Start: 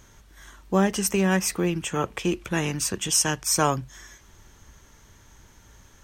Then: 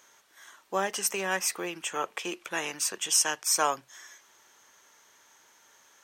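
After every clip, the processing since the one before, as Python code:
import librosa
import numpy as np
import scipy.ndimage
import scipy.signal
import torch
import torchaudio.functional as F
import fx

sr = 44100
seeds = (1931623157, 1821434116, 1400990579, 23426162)

y = scipy.signal.sosfilt(scipy.signal.butter(2, 570.0, 'highpass', fs=sr, output='sos'), x)
y = y * 10.0 ** (-2.0 / 20.0)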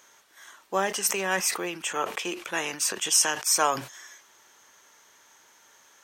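y = fx.sustainer(x, sr, db_per_s=120.0)
y = y * 10.0 ** (2.5 / 20.0)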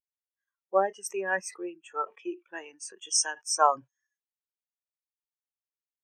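y = fx.spectral_expand(x, sr, expansion=2.5)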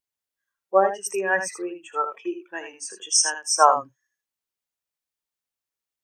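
y = x + 10.0 ** (-9.0 / 20.0) * np.pad(x, (int(78 * sr / 1000.0), 0))[:len(x)]
y = y * 10.0 ** (6.0 / 20.0)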